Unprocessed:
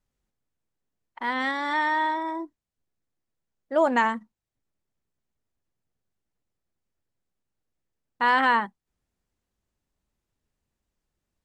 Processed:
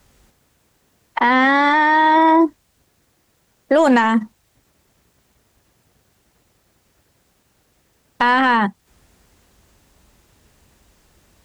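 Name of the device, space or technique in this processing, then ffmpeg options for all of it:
mastering chain: -filter_complex "[0:a]asettb=1/sr,asplit=3[a][b][c];[a]atrim=end=1.204[d];[b]atrim=start=1.2:end=2.41,asetpts=PTS-STARTPTS,afade=t=in:d=0.004:c=qsin,afade=t=out:st=1.206:d=0.004:c=qsin,aemphasis=mode=reproduction:type=50fm[e];[c]atrim=start=2.406[f];[d][e]acrossfade=d=0.004:c1=hsin:c2=qsin[g];[g][f]acrossfade=d=0.004:c1=qsin:c2=hsin,highpass=42,equalizer=f=180:t=o:w=1.8:g=-2.5,acrossover=split=280|2300[h][i][j];[h]acompressor=threshold=-36dB:ratio=4[k];[i]acompressor=threshold=-32dB:ratio=4[l];[j]acompressor=threshold=-45dB:ratio=4[m];[k][l][m]amix=inputs=3:normalize=0,acompressor=threshold=-39dB:ratio=1.5,asoftclip=type=tanh:threshold=-25dB,alimiter=level_in=33.5dB:limit=-1dB:release=50:level=0:latency=1,volume=-5.5dB"

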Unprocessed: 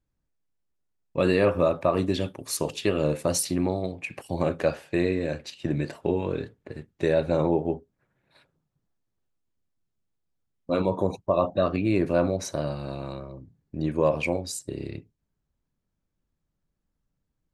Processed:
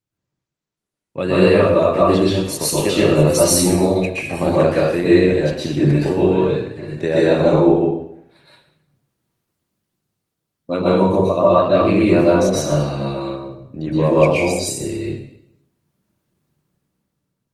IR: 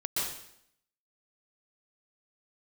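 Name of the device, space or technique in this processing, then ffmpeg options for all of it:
far-field microphone of a smart speaker: -filter_complex "[1:a]atrim=start_sample=2205[a];[0:a][a]afir=irnorm=-1:irlink=0,highpass=f=86:w=0.5412,highpass=f=86:w=1.3066,dynaudnorm=f=300:g=7:m=10dB" -ar 48000 -c:a libopus -b:a 24k

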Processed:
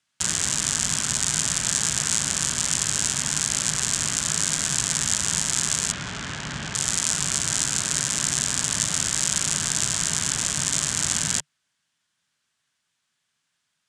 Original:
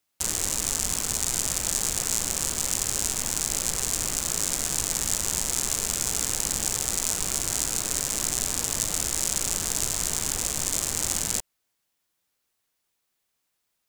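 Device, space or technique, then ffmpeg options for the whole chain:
car door speaker: -filter_complex "[0:a]asettb=1/sr,asplit=3[a][b][c];[a]atrim=end=5.924[d];[b]atrim=start=5.92:end=6.75,asetpts=PTS-STARTPTS,afade=t=in:d=0.004:c=qsin,afade=t=out:st=0.826:d=0.004:c=qsin,lowpass=2.9k[e];[c]atrim=start=6.746[f];[d][e]acrossfade=d=0.004:c1=hsin:c2=qsin[g];[g][f]acrossfade=d=0.004:c1=qsin:c2=hsin,highpass=82,equalizer=f=150:t=q:w=4:g=7,equalizer=f=340:t=q:w=4:g=-7,equalizer=f=490:t=q:w=4:g=-10,equalizer=f=770:t=q:w=4:g=-5,equalizer=f=1.6k:t=q:w=4:g=6,equalizer=f=3.2k:t=q:w=4:g=4,lowpass=f=8.9k:w=0.5412,lowpass=f=8.9k:w=1.3066,volume=4dB"

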